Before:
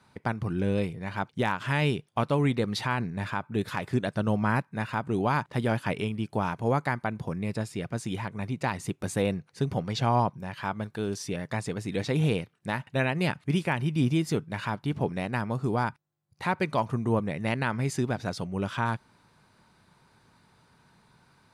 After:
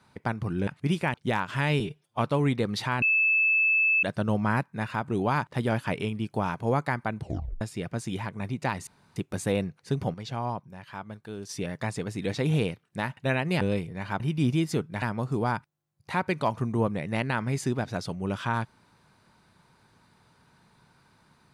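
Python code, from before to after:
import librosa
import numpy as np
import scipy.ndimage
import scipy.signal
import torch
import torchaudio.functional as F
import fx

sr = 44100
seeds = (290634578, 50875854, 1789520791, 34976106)

y = fx.edit(x, sr, fx.swap(start_s=0.67, length_s=0.59, other_s=13.31, other_length_s=0.47),
    fx.stretch_span(start_s=1.92, length_s=0.26, factor=1.5),
    fx.bleep(start_s=3.01, length_s=1.01, hz=2620.0, db=-19.5),
    fx.tape_stop(start_s=7.17, length_s=0.43),
    fx.insert_room_tone(at_s=8.86, length_s=0.29),
    fx.clip_gain(start_s=9.84, length_s=1.35, db=-7.5),
    fx.cut(start_s=14.6, length_s=0.74), tone=tone)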